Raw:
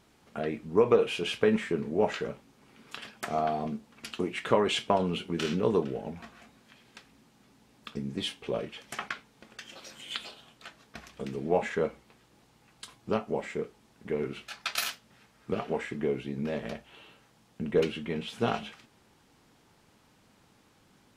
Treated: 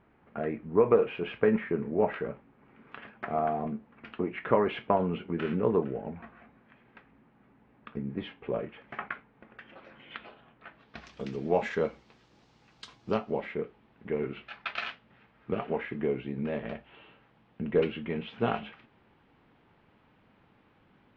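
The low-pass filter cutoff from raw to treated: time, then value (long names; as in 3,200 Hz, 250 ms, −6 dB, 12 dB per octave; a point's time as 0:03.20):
low-pass filter 24 dB per octave
0:10.67 2,200 Hz
0:11.09 5,900 Hz
0:13.11 5,900 Hz
0:13.58 2,900 Hz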